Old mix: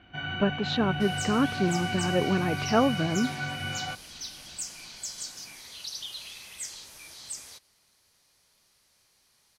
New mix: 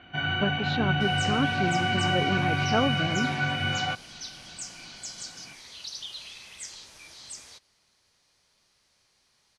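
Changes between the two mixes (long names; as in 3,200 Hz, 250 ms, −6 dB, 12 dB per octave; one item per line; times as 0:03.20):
speech −3.0 dB
first sound +6.0 dB
master: add low-pass filter 7,100 Hz 12 dB per octave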